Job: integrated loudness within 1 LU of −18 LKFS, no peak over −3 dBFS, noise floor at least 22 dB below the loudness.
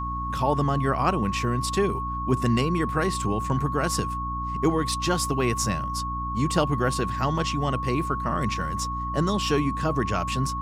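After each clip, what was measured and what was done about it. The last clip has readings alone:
mains hum 60 Hz; hum harmonics up to 300 Hz; level of the hum −30 dBFS; interfering tone 1,100 Hz; level of the tone −29 dBFS; integrated loudness −25.5 LKFS; sample peak −8.5 dBFS; target loudness −18.0 LKFS
→ hum removal 60 Hz, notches 5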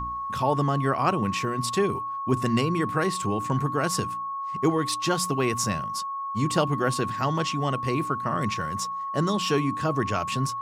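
mains hum none found; interfering tone 1,100 Hz; level of the tone −29 dBFS
→ notch filter 1,100 Hz, Q 30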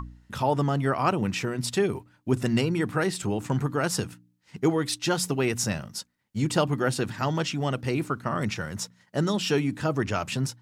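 interfering tone none found; integrated loudness −27.0 LKFS; sample peak −10.5 dBFS; target loudness −18.0 LKFS
→ level +9 dB
brickwall limiter −3 dBFS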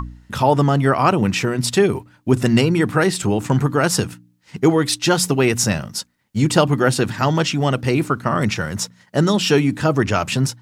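integrated loudness −18.5 LKFS; sample peak −3.0 dBFS; background noise floor −58 dBFS

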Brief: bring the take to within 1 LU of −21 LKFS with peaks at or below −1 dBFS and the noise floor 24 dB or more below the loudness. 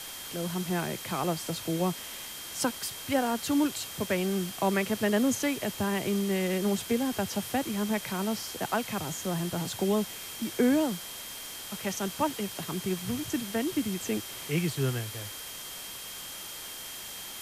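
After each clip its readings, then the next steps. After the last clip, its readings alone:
interfering tone 3,200 Hz; level of the tone −46 dBFS; background noise floor −41 dBFS; target noise floor −55 dBFS; integrated loudness −31.0 LKFS; sample peak −14.0 dBFS; target loudness −21.0 LKFS
→ notch filter 3,200 Hz, Q 30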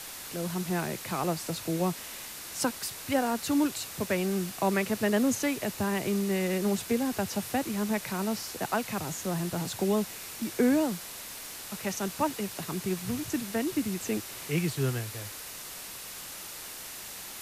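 interfering tone none found; background noise floor −42 dBFS; target noise floor −55 dBFS
→ broadband denoise 13 dB, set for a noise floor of −42 dBFS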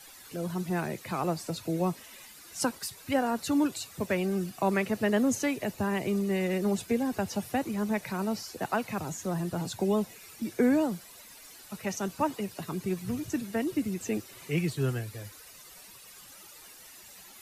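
background noise floor −51 dBFS; target noise floor −55 dBFS
→ broadband denoise 6 dB, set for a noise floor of −51 dBFS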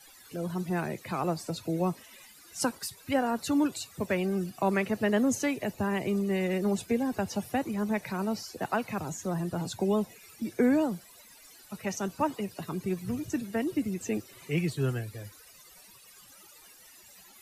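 background noise floor −54 dBFS; target noise floor −55 dBFS
→ broadband denoise 6 dB, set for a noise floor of −54 dBFS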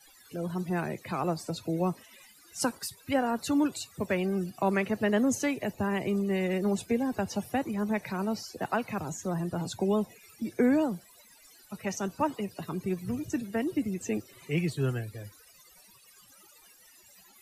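background noise floor −58 dBFS; integrated loudness −31.0 LKFS; sample peak −14.0 dBFS; target loudness −21.0 LKFS
→ level +10 dB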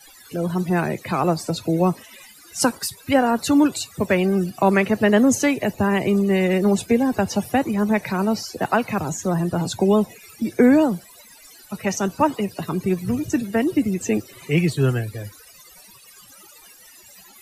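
integrated loudness −21.0 LKFS; sample peak −4.0 dBFS; background noise floor −48 dBFS

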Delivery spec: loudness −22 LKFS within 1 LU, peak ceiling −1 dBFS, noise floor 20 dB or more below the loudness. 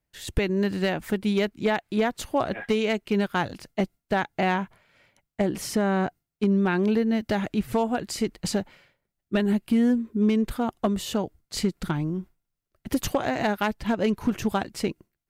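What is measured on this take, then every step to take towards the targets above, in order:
share of clipped samples 0.3%; peaks flattened at −14.5 dBFS; integrated loudness −26.5 LKFS; sample peak −14.5 dBFS; target loudness −22.0 LKFS
→ clipped peaks rebuilt −14.5 dBFS
level +4.5 dB

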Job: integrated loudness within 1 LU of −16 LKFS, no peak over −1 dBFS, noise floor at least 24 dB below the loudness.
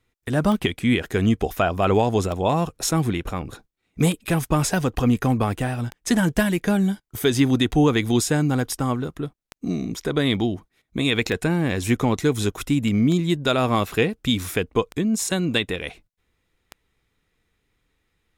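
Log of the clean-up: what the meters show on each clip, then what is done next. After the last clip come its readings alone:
number of clicks 10; integrated loudness −22.5 LKFS; sample peak −8.0 dBFS; target loudness −16.0 LKFS
→ click removal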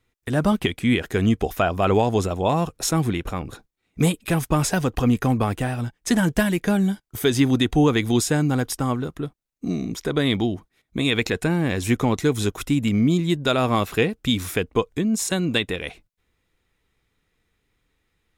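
number of clicks 0; integrated loudness −22.5 LKFS; sample peak −8.0 dBFS; target loudness −16.0 LKFS
→ level +6.5 dB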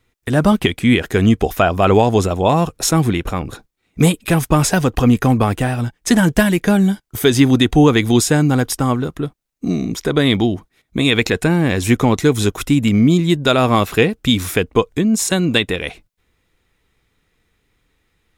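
integrated loudness −16.0 LKFS; sample peak −1.5 dBFS; background noise floor −68 dBFS

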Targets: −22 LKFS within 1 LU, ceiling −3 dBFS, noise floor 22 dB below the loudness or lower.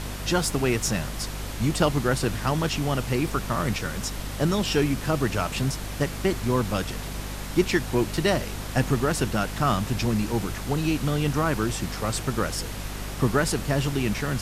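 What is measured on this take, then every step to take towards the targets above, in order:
mains hum 50 Hz; hum harmonics up to 250 Hz; level of the hum −32 dBFS; background noise floor −34 dBFS; target noise floor −48 dBFS; integrated loudness −26.0 LKFS; sample peak −8.0 dBFS; target loudness −22.0 LKFS
→ hum removal 50 Hz, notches 5
noise reduction from a noise print 14 dB
level +4 dB

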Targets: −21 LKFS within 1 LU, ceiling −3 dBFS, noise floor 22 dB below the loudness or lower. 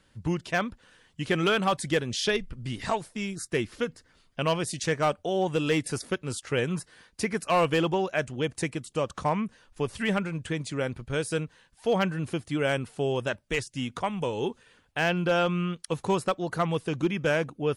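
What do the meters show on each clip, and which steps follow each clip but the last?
share of clipped samples 0.4%; peaks flattened at −17.0 dBFS; integrated loudness −29.0 LKFS; sample peak −17.0 dBFS; target loudness −21.0 LKFS
→ clipped peaks rebuilt −17 dBFS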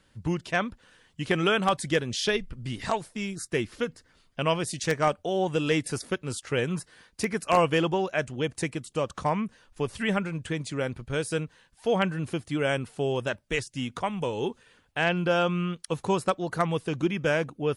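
share of clipped samples 0.0%; integrated loudness −28.5 LKFS; sample peak −8.0 dBFS; target loudness −21.0 LKFS
→ level +7.5 dB
brickwall limiter −3 dBFS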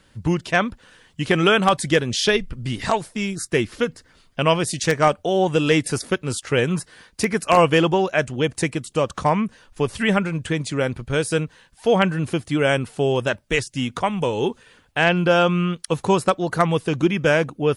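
integrated loudness −21.0 LKFS; sample peak −3.0 dBFS; background noise floor −57 dBFS

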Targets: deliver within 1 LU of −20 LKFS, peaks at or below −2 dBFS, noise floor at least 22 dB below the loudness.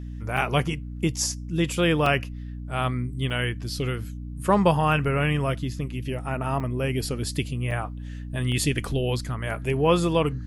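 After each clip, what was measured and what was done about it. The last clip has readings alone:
number of dropouts 6; longest dropout 3.4 ms; mains hum 60 Hz; hum harmonics up to 300 Hz; level of the hum −32 dBFS; integrated loudness −25.5 LKFS; sample peak −7.0 dBFS; target loudness −20.0 LKFS
→ repair the gap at 0:00.37/0:02.06/0:03.30/0:06.60/0:07.71/0:08.52, 3.4 ms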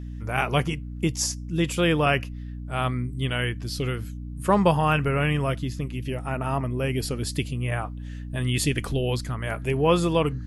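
number of dropouts 0; mains hum 60 Hz; hum harmonics up to 300 Hz; level of the hum −32 dBFS
→ hum removal 60 Hz, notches 5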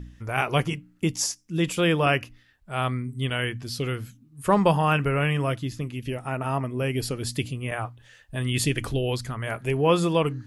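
mains hum none found; integrated loudness −26.0 LKFS; sample peak −7.0 dBFS; target loudness −20.0 LKFS
→ level +6 dB
brickwall limiter −2 dBFS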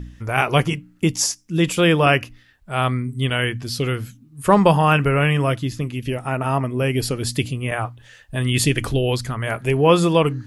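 integrated loudness −20.0 LKFS; sample peak −2.0 dBFS; background noise floor −52 dBFS

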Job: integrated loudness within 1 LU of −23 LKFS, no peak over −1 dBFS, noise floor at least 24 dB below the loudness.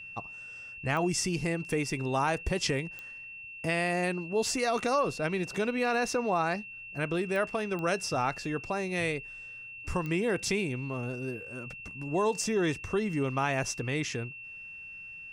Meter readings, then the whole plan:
number of clicks 5; interfering tone 2,700 Hz; level of the tone −42 dBFS; integrated loudness −31.0 LKFS; sample peak −15.5 dBFS; target loudness −23.0 LKFS
→ click removal
notch filter 2,700 Hz, Q 30
level +8 dB

